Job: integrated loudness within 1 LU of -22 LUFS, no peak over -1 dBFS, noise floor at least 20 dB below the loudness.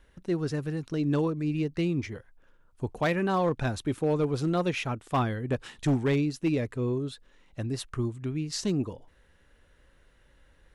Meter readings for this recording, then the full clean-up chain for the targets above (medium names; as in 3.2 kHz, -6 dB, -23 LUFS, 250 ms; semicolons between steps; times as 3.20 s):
clipped samples 0.7%; clipping level -19.5 dBFS; loudness -29.5 LUFS; peak level -19.5 dBFS; loudness target -22.0 LUFS
-> clip repair -19.5 dBFS; trim +7.5 dB